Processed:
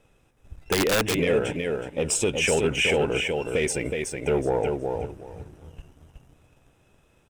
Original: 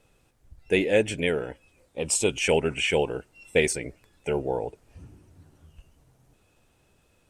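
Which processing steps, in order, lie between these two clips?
in parallel at -2 dB: compression, threshold -32 dBFS, peak gain reduction 15.5 dB; on the sum: treble shelf 4.8 kHz -6 dB; peak limiter -14 dBFS, peak gain reduction 9 dB; on a send: feedback delay 370 ms, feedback 21%, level -5 dB; on the sum: waveshaping leveller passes 1; band-stop 4.4 kHz, Q 5.8; 0.72–1.19 s: integer overflow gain 15.5 dB; trim -1 dB

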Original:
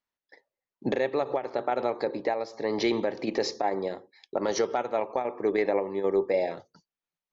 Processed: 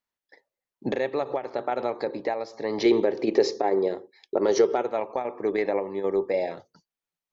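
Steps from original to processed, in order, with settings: 2.85–4.89 s: peaking EQ 400 Hz +10.5 dB 0.61 oct

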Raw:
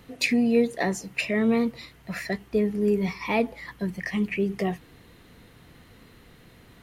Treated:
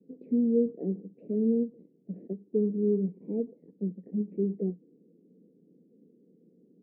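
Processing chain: gate with hold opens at -46 dBFS; in parallel at -11 dB: Schmitt trigger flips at -33 dBFS; on the sum: elliptic band-pass 180–470 Hz, stop band 50 dB; distance through air 300 m; endings held to a fixed fall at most 300 dB/s; trim -3 dB

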